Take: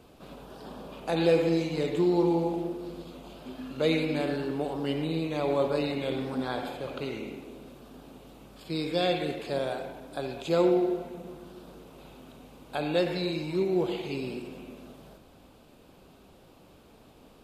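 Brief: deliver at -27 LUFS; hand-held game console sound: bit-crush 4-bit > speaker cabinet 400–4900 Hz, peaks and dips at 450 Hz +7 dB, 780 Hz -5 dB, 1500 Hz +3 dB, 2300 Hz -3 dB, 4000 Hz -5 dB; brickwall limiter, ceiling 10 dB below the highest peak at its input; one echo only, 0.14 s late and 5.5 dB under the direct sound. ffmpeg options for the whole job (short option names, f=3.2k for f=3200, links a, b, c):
-af "alimiter=limit=-21.5dB:level=0:latency=1,aecho=1:1:140:0.531,acrusher=bits=3:mix=0:aa=0.000001,highpass=400,equalizer=f=450:t=q:w=4:g=7,equalizer=f=780:t=q:w=4:g=-5,equalizer=f=1.5k:t=q:w=4:g=3,equalizer=f=2.3k:t=q:w=4:g=-3,equalizer=f=4k:t=q:w=4:g=-5,lowpass=f=4.9k:w=0.5412,lowpass=f=4.9k:w=1.3066,volume=6dB"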